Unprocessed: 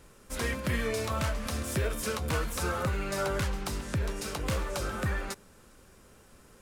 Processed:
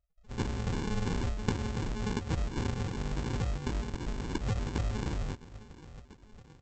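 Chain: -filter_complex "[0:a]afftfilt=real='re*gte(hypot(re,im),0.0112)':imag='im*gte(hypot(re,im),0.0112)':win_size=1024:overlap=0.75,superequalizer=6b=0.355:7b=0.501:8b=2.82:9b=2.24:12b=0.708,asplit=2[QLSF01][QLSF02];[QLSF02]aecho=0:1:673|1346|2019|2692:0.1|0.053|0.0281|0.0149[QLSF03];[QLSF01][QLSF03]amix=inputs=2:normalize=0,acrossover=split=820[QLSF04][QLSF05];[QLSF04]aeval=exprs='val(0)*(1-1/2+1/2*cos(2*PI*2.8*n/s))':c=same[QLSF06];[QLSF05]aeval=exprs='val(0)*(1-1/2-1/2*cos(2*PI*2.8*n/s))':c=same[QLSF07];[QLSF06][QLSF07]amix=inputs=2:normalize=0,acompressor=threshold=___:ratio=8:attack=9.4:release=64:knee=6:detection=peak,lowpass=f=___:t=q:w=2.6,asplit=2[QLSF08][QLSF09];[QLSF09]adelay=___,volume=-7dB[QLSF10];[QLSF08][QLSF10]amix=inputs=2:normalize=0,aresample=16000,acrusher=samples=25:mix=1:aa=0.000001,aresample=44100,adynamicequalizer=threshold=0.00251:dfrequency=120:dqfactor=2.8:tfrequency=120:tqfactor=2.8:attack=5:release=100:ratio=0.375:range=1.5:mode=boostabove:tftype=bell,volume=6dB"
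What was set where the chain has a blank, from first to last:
-37dB, 5.8k, 18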